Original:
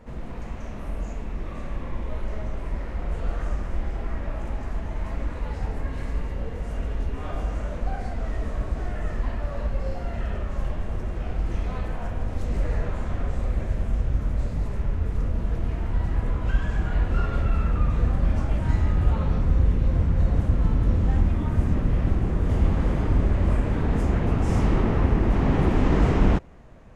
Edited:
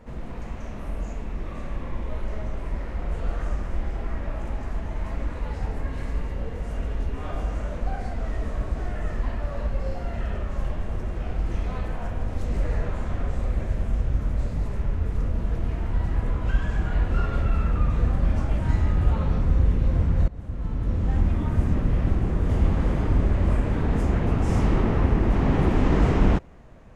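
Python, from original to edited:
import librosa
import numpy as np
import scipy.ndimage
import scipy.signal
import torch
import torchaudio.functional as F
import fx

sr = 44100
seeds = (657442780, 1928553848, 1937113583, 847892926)

y = fx.edit(x, sr, fx.fade_in_from(start_s=20.28, length_s=1.03, floor_db=-21.0), tone=tone)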